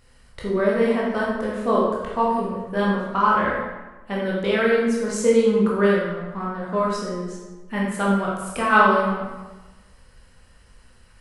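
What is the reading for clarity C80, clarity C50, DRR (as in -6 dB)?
3.0 dB, 0.0 dB, -5.5 dB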